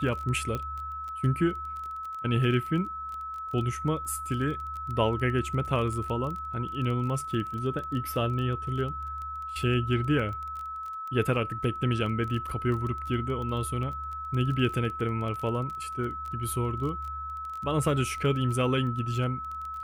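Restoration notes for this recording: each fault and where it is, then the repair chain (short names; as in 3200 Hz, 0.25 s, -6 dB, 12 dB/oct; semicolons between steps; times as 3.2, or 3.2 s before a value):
crackle 21/s -34 dBFS
tone 1300 Hz -34 dBFS
0.55 pop -19 dBFS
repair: de-click; notch 1300 Hz, Q 30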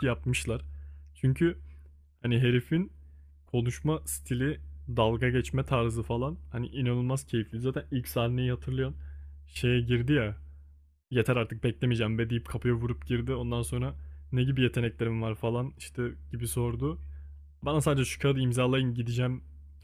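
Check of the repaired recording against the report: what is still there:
none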